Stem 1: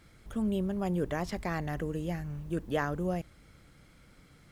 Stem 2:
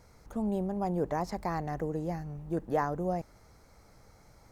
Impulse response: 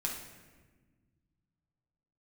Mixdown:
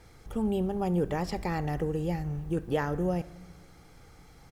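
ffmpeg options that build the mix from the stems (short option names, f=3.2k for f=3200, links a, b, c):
-filter_complex "[0:a]volume=-1.5dB,asplit=2[a][b];[b]volume=-12.5dB[c];[1:a]aecho=1:1:2.5:0.69,acompressor=threshold=-31dB:ratio=6,volume=-0.5dB[d];[2:a]atrim=start_sample=2205[e];[c][e]afir=irnorm=-1:irlink=0[f];[a][d][f]amix=inputs=3:normalize=0"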